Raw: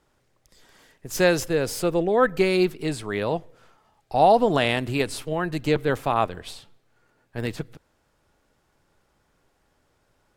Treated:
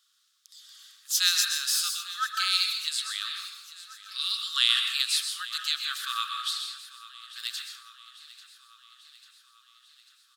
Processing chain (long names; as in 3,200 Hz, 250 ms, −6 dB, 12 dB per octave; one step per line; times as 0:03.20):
linear-phase brick-wall high-pass 1,100 Hz
high shelf with overshoot 2,800 Hz +8 dB, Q 3
repeating echo 843 ms, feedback 60%, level −17.5 dB
dense smooth reverb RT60 0.96 s, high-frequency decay 0.4×, pre-delay 110 ms, DRR 2 dB
level −3 dB